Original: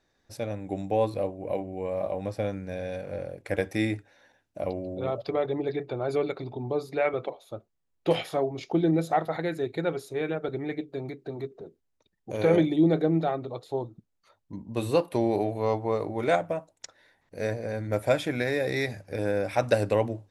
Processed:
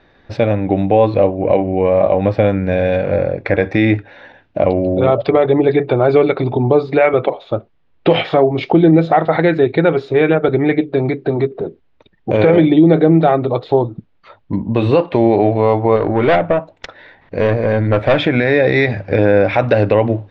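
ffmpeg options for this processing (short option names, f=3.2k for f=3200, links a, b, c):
-filter_complex "[0:a]asettb=1/sr,asplit=3[a][b][c];[a]atrim=end=3.134[d];[b]atrim=start=3.13:end=3.76,asetpts=PTS-STARTPTS,afade=t=in:d=0.004:c=qsin,afade=t=out:st=0.626:d=0.004:c=qsin,bandreject=f=3k:w=5.4[e];[c]atrim=start=3.756[f];[d][e]acrossfade=d=0.004:c1=hsin:c2=qsin[g];[g][f]acrossfade=d=0.004:c1=qsin:c2=hsin,asettb=1/sr,asplit=3[h][i][j];[h]atrim=end=15.964[k];[i]atrim=start=15.96:end=18.18,asetpts=PTS-STARTPTS,afade=t=in:d=0.004:c=qsin,afade=t=out:st=2.216:d=0.004:c=qsin,aeval=exprs='(tanh(17.8*val(0)+0.25)-tanh(0.25))/17.8':c=same[l];[j]atrim=start=18.176[m];[k][l]acrossfade=d=0.004:c1=hsin:c2=qsin[n];[n][m]acrossfade=d=0.004:c1=qsin:c2=hsin,lowpass=f=3.4k:w=0.5412,lowpass=f=3.4k:w=1.3066,acompressor=threshold=-36dB:ratio=1.5,alimiter=level_in=22dB:limit=-1dB:release=50:level=0:latency=1,volume=-1dB"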